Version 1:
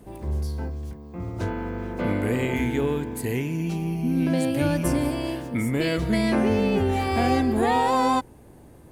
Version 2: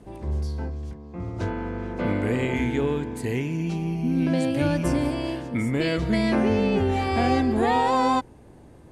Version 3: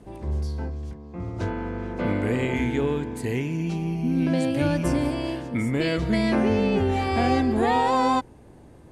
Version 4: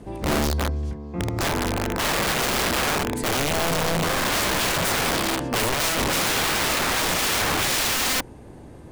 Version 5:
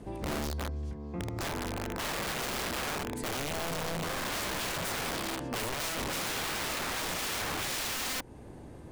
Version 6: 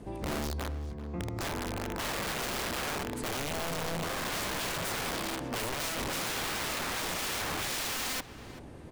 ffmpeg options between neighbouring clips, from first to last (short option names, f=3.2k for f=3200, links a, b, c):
-af "lowpass=7.4k"
-af anull
-af "aeval=exprs='(mod(15.8*val(0)+1,2)-1)/15.8':c=same,volume=6dB"
-af "acompressor=threshold=-30dB:ratio=3,volume=-4.5dB"
-filter_complex "[0:a]asplit=2[a][b];[b]adelay=388,lowpass=f=2.8k:p=1,volume=-14dB,asplit=2[c][d];[d]adelay=388,lowpass=f=2.8k:p=1,volume=0.31,asplit=2[e][f];[f]adelay=388,lowpass=f=2.8k:p=1,volume=0.31[g];[a][c][e][g]amix=inputs=4:normalize=0"